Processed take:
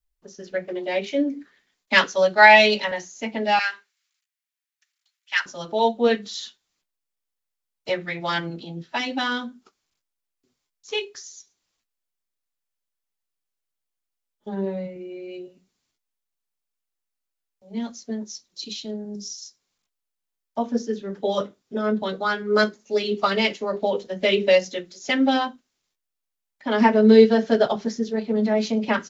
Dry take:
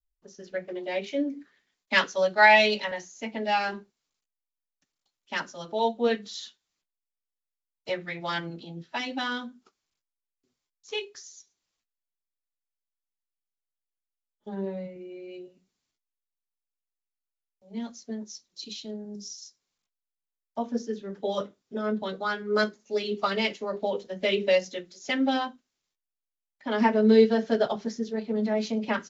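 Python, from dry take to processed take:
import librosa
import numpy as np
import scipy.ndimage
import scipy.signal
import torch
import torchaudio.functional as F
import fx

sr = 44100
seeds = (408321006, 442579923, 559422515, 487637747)

y = fx.highpass_res(x, sr, hz=1800.0, q=1.7, at=(3.59, 5.46))
y = y * 10.0 ** (5.5 / 20.0)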